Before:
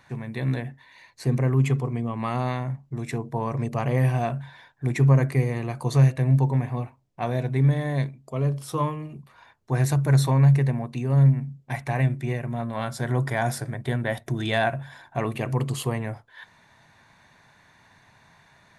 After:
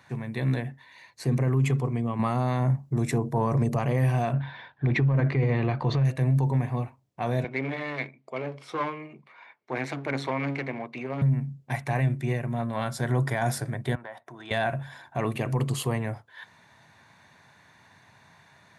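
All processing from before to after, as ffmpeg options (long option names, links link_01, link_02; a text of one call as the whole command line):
ffmpeg -i in.wav -filter_complex "[0:a]asettb=1/sr,asplit=3[link_01][link_02][link_03];[link_01]atrim=end=2.194[link_04];[link_02]atrim=start=2.19:end=3.79,asetpts=PTS-STARTPTS,afade=type=in:duration=0.004:curve=qsin,afade=type=out:start_time=1.596:duration=0.004:curve=qsin,equalizer=frequency=2600:width_type=o:width=1.8:gain=-6,acontrast=66[link_05];[link_03]atrim=start=3.786[link_06];[link_04][link_05]acrossfade=duration=0.004:curve1=hsin:curve2=qsin[link_07];[link_07][link_06]acrossfade=duration=0.004:curve1=qsin:curve2=hsin,asettb=1/sr,asplit=3[link_08][link_09][link_10];[link_08]atrim=end=4.334[link_11];[link_09]atrim=start=4.33:end=6.05,asetpts=PTS-STARTPTS,afade=type=in:duration=0.004:curve=qsin,afade=type=out:start_time=1.716:duration=0.004:curve=qsin,aeval=exprs='if(lt(val(0),0),0.708*val(0),val(0))':channel_layout=same,lowpass=frequency=3900:width=0.5412,lowpass=frequency=3900:width=1.3066,acontrast=70[link_12];[link_10]atrim=start=6.046[link_13];[link_11][link_12]acrossfade=duration=0.004:curve1=hsin:curve2=qsin[link_14];[link_14][link_13]acrossfade=duration=0.004:curve1=qsin:curve2=hsin,asettb=1/sr,asplit=3[link_15][link_16][link_17];[link_15]atrim=end=7.444[link_18];[link_16]atrim=start=7.44:end=11.22,asetpts=PTS-STARTPTS,afade=type=in:duration=0.004:curve=qsin,afade=type=out:start_time=3.776:duration=0.004:curve=qsin,equalizer=frequency=2200:width_type=o:width=0.22:gain=14.5,aeval=exprs='clip(val(0),-1,0.0376)':channel_layout=same,highpass=310,lowpass=3700[link_19];[link_17]atrim=start=11.216[link_20];[link_18][link_19]acrossfade=duration=0.004:curve1=hsin:curve2=qsin[link_21];[link_21][link_20]acrossfade=duration=0.004:curve1=qsin:curve2=hsin,asettb=1/sr,asplit=3[link_22][link_23][link_24];[link_22]atrim=end=13.954[link_25];[link_23]atrim=start=13.95:end=14.51,asetpts=PTS-STARTPTS,afade=type=in:duration=0.004:curve=qsin,afade=type=out:start_time=0.556:duration=0.004:curve=qsin,bandpass=frequency=1000:width_type=q:width=1.9,aemphasis=mode=production:type=cd,acompressor=threshold=-36dB:ratio=3:attack=3.2:release=140:knee=1:detection=peak[link_26];[link_24]atrim=start=14.506[link_27];[link_25][link_26]acrossfade=duration=0.004:curve1=hsin:curve2=qsin[link_28];[link_28][link_27]acrossfade=duration=0.004:curve1=qsin:curve2=hsin,highpass=frequency=72:width=0.5412,highpass=frequency=72:width=1.3066,alimiter=limit=-16.5dB:level=0:latency=1:release=14" out.wav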